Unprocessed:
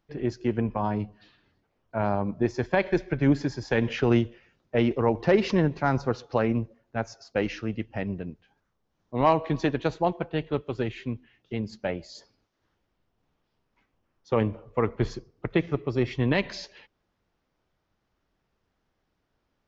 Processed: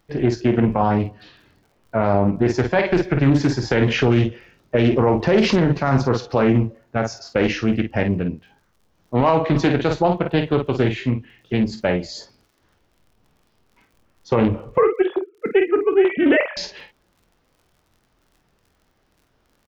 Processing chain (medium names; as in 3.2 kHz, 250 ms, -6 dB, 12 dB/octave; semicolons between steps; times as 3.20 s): 14.78–16.57 s: formants replaced by sine waves; crackle 39 per s -56 dBFS; on a send: early reflections 23 ms -10.5 dB, 50 ms -8.5 dB; on the sum: loudness maximiser +16.5 dB; loudspeaker Doppler distortion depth 0.31 ms; trim -6 dB